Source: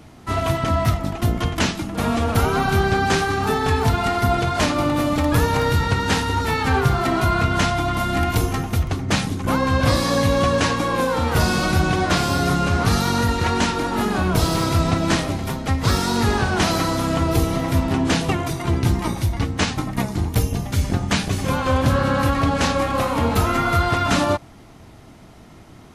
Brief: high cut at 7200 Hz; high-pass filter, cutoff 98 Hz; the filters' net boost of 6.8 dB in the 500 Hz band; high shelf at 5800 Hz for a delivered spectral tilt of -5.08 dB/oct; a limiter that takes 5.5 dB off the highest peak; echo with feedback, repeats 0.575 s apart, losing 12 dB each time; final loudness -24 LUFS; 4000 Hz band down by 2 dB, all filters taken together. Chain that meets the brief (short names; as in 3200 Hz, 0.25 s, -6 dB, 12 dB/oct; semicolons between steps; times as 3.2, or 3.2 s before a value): HPF 98 Hz; LPF 7200 Hz; bell 500 Hz +8.5 dB; bell 4000 Hz -3.5 dB; high shelf 5800 Hz +3.5 dB; limiter -8.5 dBFS; feedback echo 0.575 s, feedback 25%, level -12 dB; gain -5 dB